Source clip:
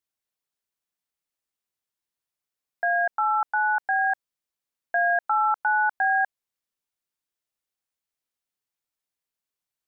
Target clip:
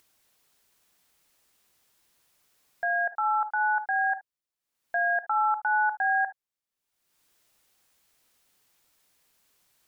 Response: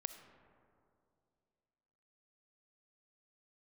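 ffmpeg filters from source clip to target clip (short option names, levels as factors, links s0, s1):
-filter_complex "[0:a]acompressor=mode=upward:threshold=0.00562:ratio=2.5[s0];[1:a]atrim=start_sample=2205,atrim=end_sample=4410,asetrate=57330,aresample=44100[s1];[s0][s1]afir=irnorm=-1:irlink=0,volume=1.19"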